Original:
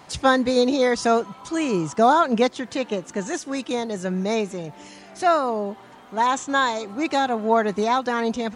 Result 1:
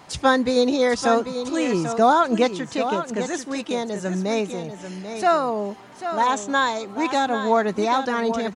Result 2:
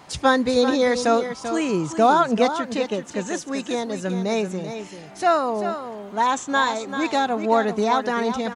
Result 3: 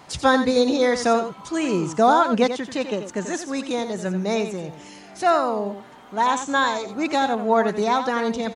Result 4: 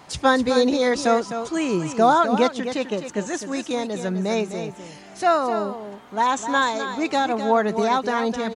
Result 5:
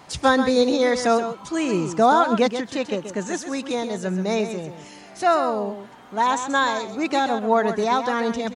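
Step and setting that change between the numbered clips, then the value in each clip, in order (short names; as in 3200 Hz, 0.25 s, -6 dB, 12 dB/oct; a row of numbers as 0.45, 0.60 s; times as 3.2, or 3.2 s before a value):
echo, time: 791, 389, 88, 256, 131 ms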